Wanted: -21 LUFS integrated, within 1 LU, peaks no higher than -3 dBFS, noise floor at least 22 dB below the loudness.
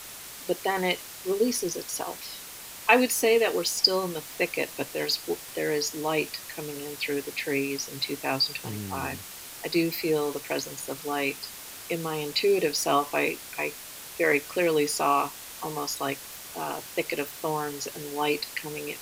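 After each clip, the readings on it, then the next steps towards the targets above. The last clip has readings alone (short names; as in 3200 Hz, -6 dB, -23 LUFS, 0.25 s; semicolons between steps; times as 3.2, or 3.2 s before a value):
noise floor -43 dBFS; noise floor target -50 dBFS; loudness -28.0 LUFS; peak -5.0 dBFS; loudness target -21.0 LUFS
-> denoiser 7 dB, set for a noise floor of -43 dBFS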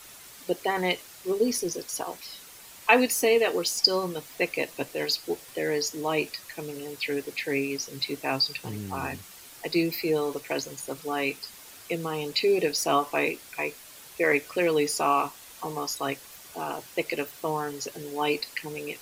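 noise floor -48 dBFS; noise floor target -50 dBFS
-> denoiser 6 dB, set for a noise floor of -48 dBFS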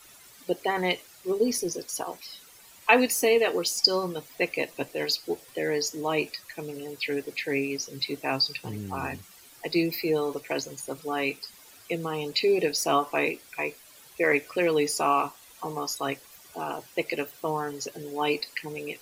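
noise floor -52 dBFS; loudness -28.0 LUFS; peak -5.0 dBFS; loudness target -21.0 LUFS
-> gain +7 dB; limiter -3 dBFS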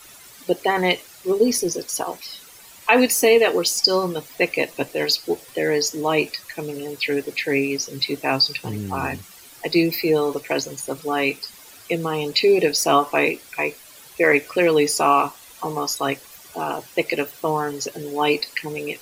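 loudness -21.0 LUFS; peak -3.0 dBFS; noise floor -45 dBFS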